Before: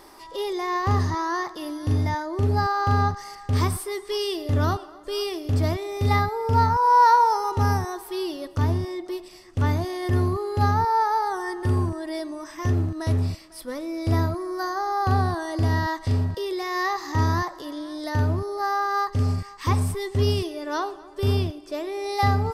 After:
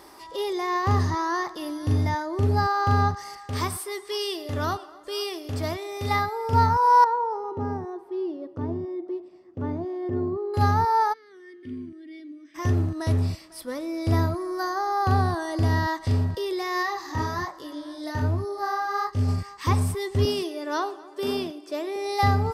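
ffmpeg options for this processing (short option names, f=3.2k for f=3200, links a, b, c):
-filter_complex "[0:a]asettb=1/sr,asplit=3[a][b][c];[a]atrim=end=3.374[d];[b]atrim=start=3.37:end=6.53,asetpts=PTS-STARTPTS,afade=t=in:d=0.004:c=qsin,afade=t=out:st=3.156:d=0.004:c=qsin,lowshelf=f=310:g=-9.5[e];[c]atrim=start=6.526[f];[d][e]acrossfade=d=0.004:c1=hsin:c2=qsin[g];[g][f]acrossfade=d=0.004:c1=qsin:c2=hsin,asettb=1/sr,asplit=3[h][i][j];[h]atrim=end=7.044[k];[i]atrim=start=7.04:end=10.54,asetpts=PTS-STARTPTS,afade=t=in:d=0.004:c=qsin,afade=t=out:st=3.496:d=0.004:c=qsin,bandpass=f=340:t=q:w=1.1[l];[j]atrim=start=10.536[m];[k][l]acrossfade=d=0.004:c1=hsin:c2=qsin[n];[n][m]acrossfade=d=0.004:c1=qsin:c2=hsin,asplit=3[o][p][q];[o]afade=t=out:st=11.12:d=0.02[r];[p]asplit=3[s][t][u];[s]bandpass=f=270:t=q:w=8,volume=0dB[v];[t]bandpass=f=2.29k:t=q:w=8,volume=-6dB[w];[u]bandpass=f=3.01k:t=q:w=8,volume=-9dB[x];[v][w][x]amix=inputs=3:normalize=0,afade=t=in:st=11.12:d=0.02,afade=t=out:st=12.54:d=0.02[y];[q]afade=t=in:st=12.54:d=0.02[z];[r][y][z]amix=inputs=3:normalize=0,asplit=3[aa][ab][ac];[aa]afade=t=out:st=16.82:d=0.02[ad];[ab]flanger=delay=19.5:depth=6.7:speed=1.3,afade=t=in:st=16.82:d=0.02,afade=t=out:st=19.27:d=0.02[ae];[ac]afade=t=in:st=19.27:d=0.02[af];[ad][ae][af]amix=inputs=3:normalize=0,asettb=1/sr,asplit=3[ag][ah][ai];[ag]atrim=end=20.254[aj];[ah]atrim=start=20.25:end=21.96,asetpts=PTS-STARTPTS,afade=t=in:d=0.004:c=qsin,afade=t=out:st=1.706:d=0.004:c=qsin,highpass=f=200:w=0.5412,highpass=f=200:w=1.3066[ak];[ai]atrim=start=21.956[al];[aj][ak]acrossfade=d=0.004:c1=hsin:c2=qsin[am];[am][al]acrossfade=d=0.004:c1=qsin:c2=hsin,highpass=49"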